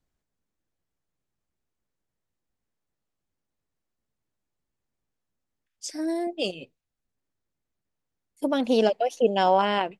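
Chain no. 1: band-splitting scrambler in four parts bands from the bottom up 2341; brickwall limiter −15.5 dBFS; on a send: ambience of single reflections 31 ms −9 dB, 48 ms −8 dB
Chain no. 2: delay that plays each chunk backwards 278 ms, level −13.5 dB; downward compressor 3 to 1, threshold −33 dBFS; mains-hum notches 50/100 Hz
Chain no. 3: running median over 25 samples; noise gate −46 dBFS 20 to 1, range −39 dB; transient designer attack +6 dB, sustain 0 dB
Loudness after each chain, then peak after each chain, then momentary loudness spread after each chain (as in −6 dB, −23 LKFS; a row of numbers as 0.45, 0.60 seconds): −23.0, −35.5, −23.5 LKFS; −12.0, −20.0, −5.0 dBFS; 12, 11, 11 LU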